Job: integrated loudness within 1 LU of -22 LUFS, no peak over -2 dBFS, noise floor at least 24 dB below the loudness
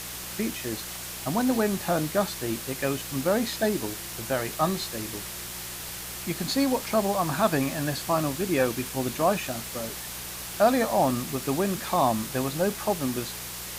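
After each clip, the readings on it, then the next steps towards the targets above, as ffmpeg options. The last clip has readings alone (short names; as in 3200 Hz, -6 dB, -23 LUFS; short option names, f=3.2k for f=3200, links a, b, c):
hum 60 Hz; harmonics up to 180 Hz; hum level -45 dBFS; noise floor -37 dBFS; noise floor target -52 dBFS; loudness -27.5 LUFS; peak -8.5 dBFS; loudness target -22.0 LUFS
-> -af "bandreject=f=60:t=h:w=4,bandreject=f=120:t=h:w=4,bandreject=f=180:t=h:w=4"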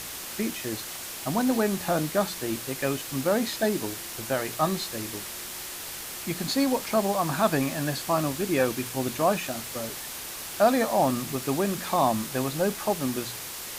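hum none; noise floor -38 dBFS; noise floor target -52 dBFS
-> -af "afftdn=nr=14:nf=-38"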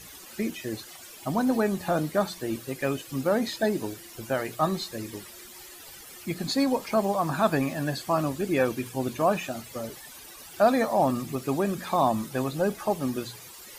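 noise floor -46 dBFS; noise floor target -52 dBFS
-> -af "afftdn=nr=6:nf=-46"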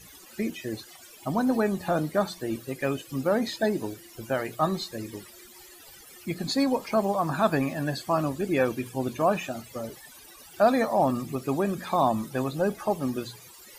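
noise floor -50 dBFS; noise floor target -52 dBFS
-> -af "afftdn=nr=6:nf=-50"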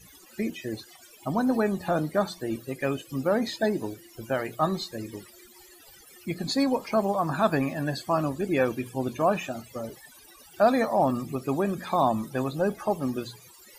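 noise floor -53 dBFS; loudness -27.5 LUFS; peak -9.5 dBFS; loudness target -22.0 LUFS
-> -af "volume=5.5dB"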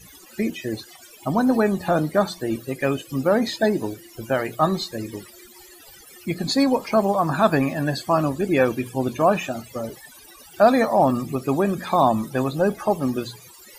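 loudness -22.0 LUFS; peak -4.0 dBFS; noise floor -47 dBFS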